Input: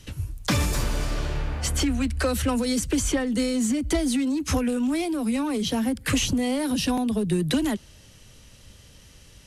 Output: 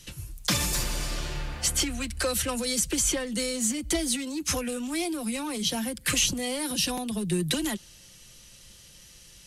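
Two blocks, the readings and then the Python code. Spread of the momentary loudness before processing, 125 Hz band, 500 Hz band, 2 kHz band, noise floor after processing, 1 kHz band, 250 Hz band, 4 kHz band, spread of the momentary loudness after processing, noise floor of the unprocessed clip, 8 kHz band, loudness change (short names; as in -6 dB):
5 LU, -6.5 dB, -4.0 dB, -1.0 dB, -52 dBFS, -4.0 dB, -7.5 dB, +2.0 dB, 7 LU, -51 dBFS, +4.5 dB, -2.5 dB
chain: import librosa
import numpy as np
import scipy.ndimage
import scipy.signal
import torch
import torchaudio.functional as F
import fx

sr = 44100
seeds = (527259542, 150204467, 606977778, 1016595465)

y = fx.high_shelf(x, sr, hz=2300.0, db=11.0)
y = y + 0.43 * np.pad(y, (int(5.7 * sr / 1000.0), 0))[:len(y)]
y = y * librosa.db_to_amplitude(-6.5)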